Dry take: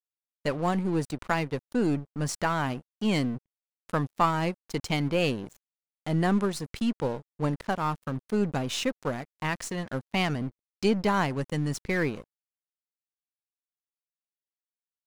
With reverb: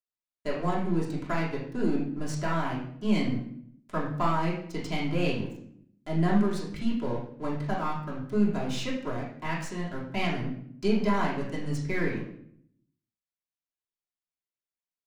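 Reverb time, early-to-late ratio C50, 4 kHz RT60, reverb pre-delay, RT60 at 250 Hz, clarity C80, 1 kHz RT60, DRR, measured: 0.65 s, 4.0 dB, 0.50 s, 3 ms, 1.0 s, 8.5 dB, 0.60 s, -6.0 dB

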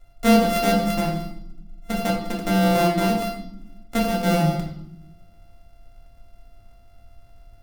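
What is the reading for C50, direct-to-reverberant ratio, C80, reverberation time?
5.5 dB, -2.5 dB, 8.5 dB, no single decay rate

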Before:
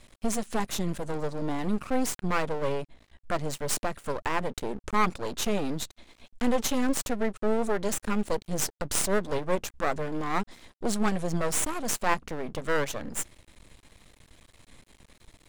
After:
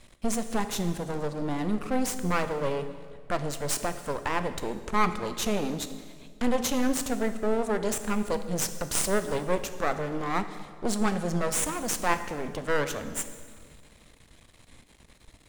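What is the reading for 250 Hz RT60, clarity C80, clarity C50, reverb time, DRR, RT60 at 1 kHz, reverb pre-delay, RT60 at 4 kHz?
2.3 s, 12.0 dB, 11.0 dB, 1.8 s, 9.5 dB, 1.7 s, 16 ms, 1.5 s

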